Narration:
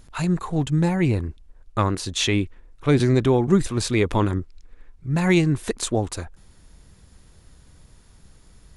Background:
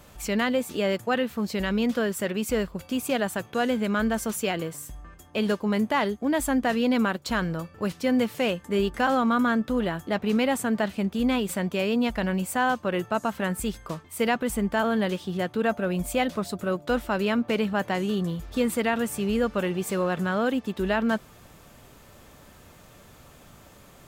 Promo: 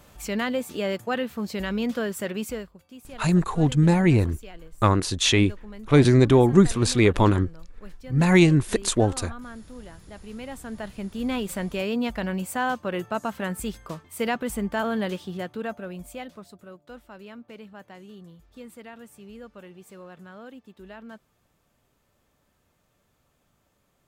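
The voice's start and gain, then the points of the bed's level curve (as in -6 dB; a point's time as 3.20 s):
3.05 s, +2.0 dB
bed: 2.43 s -2 dB
2.80 s -17.5 dB
10.15 s -17.5 dB
11.42 s -2 dB
15.16 s -2 dB
16.79 s -18.5 dB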